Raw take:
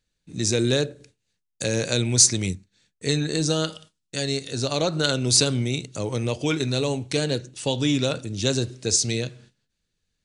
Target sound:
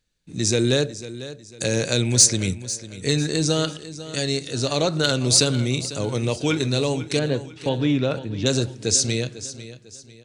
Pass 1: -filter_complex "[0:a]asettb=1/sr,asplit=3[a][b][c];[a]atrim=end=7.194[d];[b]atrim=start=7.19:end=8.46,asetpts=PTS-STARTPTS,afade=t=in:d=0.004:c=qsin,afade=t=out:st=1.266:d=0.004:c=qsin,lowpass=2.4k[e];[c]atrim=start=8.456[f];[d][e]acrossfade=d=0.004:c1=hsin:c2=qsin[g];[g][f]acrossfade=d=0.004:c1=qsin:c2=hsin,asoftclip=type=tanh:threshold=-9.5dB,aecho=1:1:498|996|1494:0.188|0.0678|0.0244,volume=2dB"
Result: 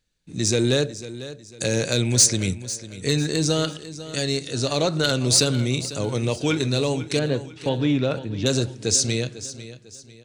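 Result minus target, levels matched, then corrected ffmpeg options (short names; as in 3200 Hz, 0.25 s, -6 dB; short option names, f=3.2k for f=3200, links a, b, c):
soft clip: distortion +10 dB
-filter_complex "[0:a]asettb=1/sr,asplit=3[a][b][c];[a]atrim=end=7.194[d];[b]atrim=start=7.19:end=8.46,asetpts=PTS-STARTPTS,afade=t=in:d=0.004:c=qsin,afade=t=out:st=1.266:d=0.004:c=qsin,lowpass=2.4k[e];[c]atrim=start=8.456[f];[d][e]acrossfade=d=0.004:c1=hsin:c2=qsin[g];[g][f]acrossfade=d=0.004:c1=qsin:c2=hsin,asoftclip=type=tanh:threshold=-3dB,aecho=1:1:498|996|1494:0.188|0.0678|0.0244,volume=2dB"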